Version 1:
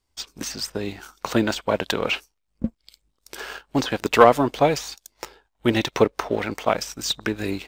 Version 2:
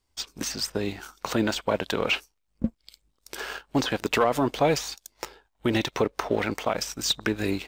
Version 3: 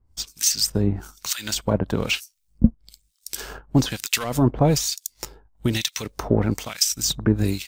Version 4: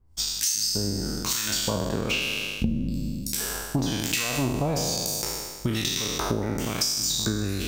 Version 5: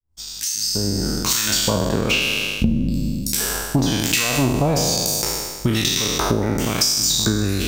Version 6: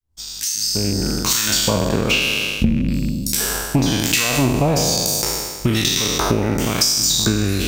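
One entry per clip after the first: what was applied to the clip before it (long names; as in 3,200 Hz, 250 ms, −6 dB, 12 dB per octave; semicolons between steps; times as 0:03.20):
brickwall limiter −12 dBFS, peak gain reduction 10.5 dB
two-band tremolo in antiphase 1.1 Hz, depth 100%, crossover 1,500 Hz; bass and treble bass +15 dB, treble +14 dB; level +1.5 dB
peak hold with a decay on every bin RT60 1.40 s; downward compressor 6 to 1, threshold −23 dBFS, peak gain reduction 15.5 dB
fade in at the beginning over 1.04 s; in parallel at −10 dB: hard clipping −19.5 dBFS, distortion −17 dB; on the sum: level +5 dB
loose part that buzzes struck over −19 dBFS, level −26 dBFS; level +1.5 dB; Opus 96 kbit/s 48,000 Hz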